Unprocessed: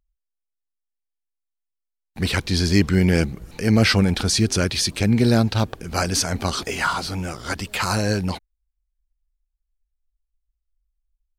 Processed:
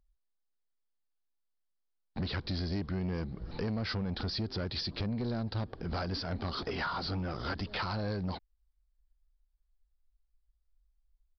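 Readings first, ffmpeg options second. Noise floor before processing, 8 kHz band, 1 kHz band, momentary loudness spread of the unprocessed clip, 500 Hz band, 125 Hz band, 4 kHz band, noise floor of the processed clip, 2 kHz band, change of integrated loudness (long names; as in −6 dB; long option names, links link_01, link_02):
−82 dBFS, below −30 dB, −12.0 dB, 10 LU, −14.0 dB, −14.0 dB, −14.0 dB, −80 dBFS, −15.5 dB, −15.0 dB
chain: -af "equalizer=frequency=2500:width=1.8:gain=-9.5,acompressor=threshold=-31dB:ratio=6,aresample=11025,asoftclip=type=tanh:threshold=-30.5dB,aresample=44100,volume=2dB"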